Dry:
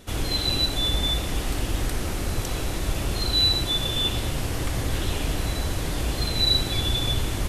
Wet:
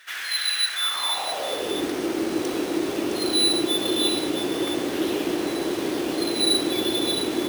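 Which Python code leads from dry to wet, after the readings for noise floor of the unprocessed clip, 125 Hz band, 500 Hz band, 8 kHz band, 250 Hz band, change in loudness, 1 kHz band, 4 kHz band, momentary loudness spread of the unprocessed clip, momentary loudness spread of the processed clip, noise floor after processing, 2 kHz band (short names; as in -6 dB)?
-29 dBFS, -16.0 dB, +8.0 dB, +3.0 dB, +7.5 dB, +1.5 dB, +3.0 dB, 0.0 dB, 9 LU, 7 LU, -30 dBFS, +3.0 dB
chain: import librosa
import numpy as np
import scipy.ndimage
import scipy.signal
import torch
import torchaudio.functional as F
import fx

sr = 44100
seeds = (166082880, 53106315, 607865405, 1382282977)

p1 = fx.octave_divider(x, sr, octaves=2, level_db=1.0)
p2 = np.repeat(scipy.signal.resample_poly(p1, 1, 3), 3)[:len(p1)]
p3 = p2 + fx.echo_single(p2, sr, ms=663, db=-8.0, dry=0)
y = fx.filter_sweep_highpass(p3, sr, from_hz=1700.0, to_hz=330.0, start_s=0.72, end_s=1.83, q=4.4)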